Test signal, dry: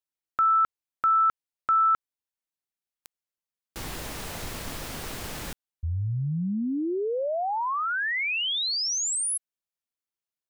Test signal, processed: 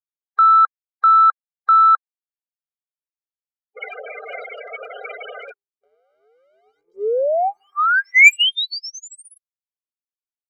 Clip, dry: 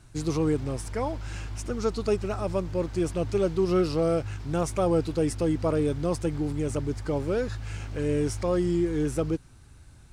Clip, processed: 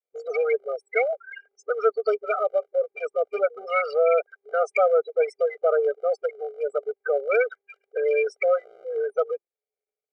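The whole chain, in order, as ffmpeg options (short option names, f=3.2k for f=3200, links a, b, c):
-filter_complex "[0:a]adynamicequalizer=threshold=0.0112:dfrequency=320:dqfactor=1.6:tfrequency=320:tqfactor=1.6:attack=5:release=100:ratio=0.333:range=2.5:mode=cutabove:tftype=bell,afftfilt=real='re*gte(hypot(re,im),0.0251)':imag='im*gte(hypot(re,im),0.0251)':win_size=1024:overlap=0.75,lowpass=f=2.4k:t=q:w=12,asplit=2[a][b];[b]acompressor=threshold=-28dB:ratio=6:attack=0.12:release=52:knee=1:detection=rms,volume=1.5dB[c];[a][c]amix=inputs=2:normalize=0,asoftclip=type=tanh:threshold=-5.5dB,bandreject=f=57.24:t=h:w=4,bandreject=f=114.48:t=h:w=4,bandreject=f=171.72:t=h:w=4,bandreject=f=228.96:t=h:w=4,afftfilt=real='re*eq(mod(floor(b*sr/1024/400),2),1)':imag='im*eq(mod(floor(b*sr/1024/400),2),1)':win_size=1024:overlap=0.75,volume=4.5dB"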